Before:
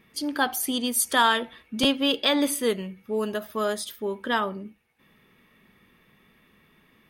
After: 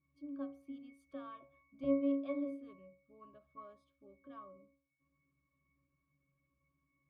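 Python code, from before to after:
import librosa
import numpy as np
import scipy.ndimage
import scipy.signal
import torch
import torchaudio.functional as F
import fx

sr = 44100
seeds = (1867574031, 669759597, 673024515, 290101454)

y = fx.peak_eq(x, sr, hz=690.0, db=8.0, octaves=0.57, at=(1.4, 2.6))
y = fx.octave_resonator(y, sr, note='C#', decay_s=0.45)
y = F.gain(torch.from_numpy(y), -4.0).numpy()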